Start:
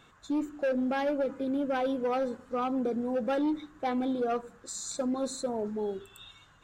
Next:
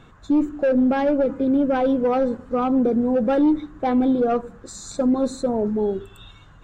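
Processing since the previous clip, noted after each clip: tilt -2.5 dB/oct; gain +7 dB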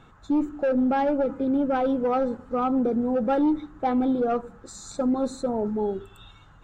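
small resonant body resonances 850/1300 Hz, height 7 dB, ringing for 25 ms; gain -4.5 dB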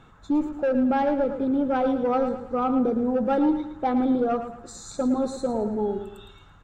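feedback echo 0.111 s, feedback 39%, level -9.5 dB

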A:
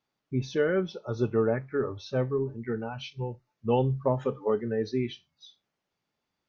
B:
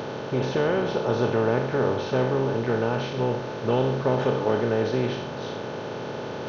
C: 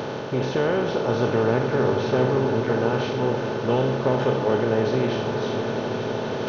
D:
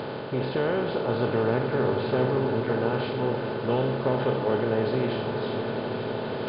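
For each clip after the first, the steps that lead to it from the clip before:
per-bin compression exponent 0.2; gain -3 dB
reverse; upward compressor, threshold -25 dBFS; reverse; swelling echo 81 ms, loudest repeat 8, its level -17 dB; gain +1 dB
brick-wall FIR low-pass 5100 Hz; gain -3.5 dB

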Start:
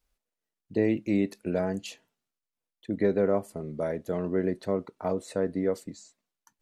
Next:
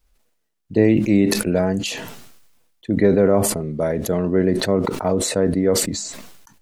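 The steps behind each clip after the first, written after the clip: low shelf 120 Hz +7.5 dB; sustainer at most 44 dB/s; gain +8 dB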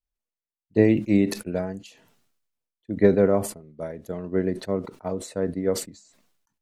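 upward expander 2.5:1, over -29 dBFS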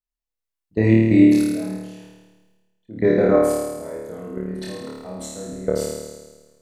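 level quantiser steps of 20 dB; on a send: flutter echo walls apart 4.6 m, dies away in 1.3 s; on the sum: gain +3 dB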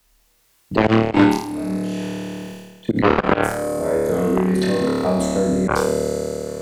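added harmonics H 5 -30 dB, 7 -12 dB, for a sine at -2 dBFS; auto swell 0.11 s; three-band squash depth 100%; gain +6 dB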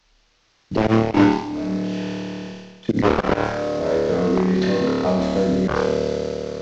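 CVSD 32 kbps

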